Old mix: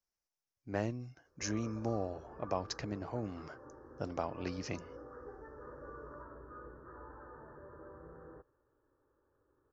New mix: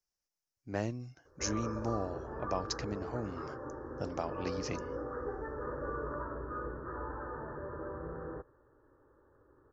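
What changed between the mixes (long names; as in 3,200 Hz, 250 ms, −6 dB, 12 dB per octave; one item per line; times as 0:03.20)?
background +10.5 dB
master: add bass and treble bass +1 dB, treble +5 dB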